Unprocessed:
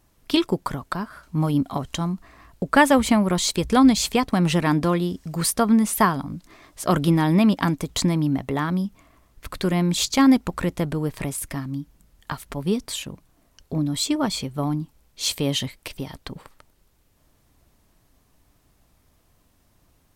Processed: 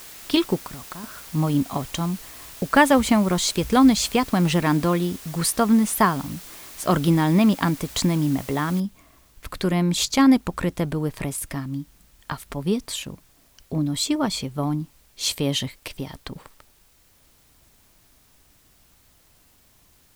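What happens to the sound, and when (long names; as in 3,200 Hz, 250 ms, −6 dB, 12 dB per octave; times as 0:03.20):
0:00.59–0:01.04: downward compressor 12 to 1, threshold −32 dBFS
0:08.80: noise floor change −42 dB −60 dB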